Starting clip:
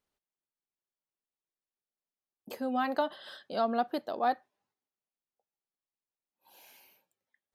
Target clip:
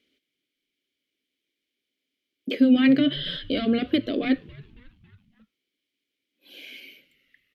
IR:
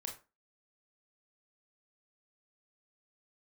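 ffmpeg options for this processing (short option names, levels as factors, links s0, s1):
-filter_complex "[0:a]highshelf=f=7900:g=6.5,acrossover=split=3500[s0][s1];[s1]acompressor=threshold=0.00141:ratio=4:attack=1:release=60[s2];[s0][s2]amix=inputs=2:normalize=0,equalizer=f=125:t=o:w=1:g=-6,equalizer=f=250:t=o:w=1:g=-10,equalizer=f=500:t=o:w=1:g=4,equalizer=f=1000:t=o:w=1:g=-7,equalizer=f=2000:t=o:w=1:g=-5,equalizer=f=8000:t=o:w=1:g=-7,apsyclip=56.2,asplit=3[s3][s4][s5];[s3]bandpass=f=270:t=q:w=8,volume=1[s6];[s4]bandpass=f=2290:t=q:w=8,volume=0.501[s7];[s5]bandpass=f=3010:t=q:w=8,volume=0.355[s8];[s6][s7][s8]amix=inputs=3:normalize=0,asplit=5[s9][s10][s11][s12][s13];[s10]adelay=275,afreqshift=-120,volume=0.075[s14];[s11]adelay=550,afreqshift=-240,volume=0.0427[s15];[s12]adelay=825,afreqshift=-360,volume=0.0243[s16];[s13]adelay=1100,afreqshift=-480,volume=0.014[s17];[s9][s14][s15][s16][s17]amix=inputs=5:normalize=0,acrossover=split=4200[s18][s19];[s19]volume=56.2,asoftclip=hard,volume=0.0178[s20];[s18][s20]amix=inputs=2:normalize=0"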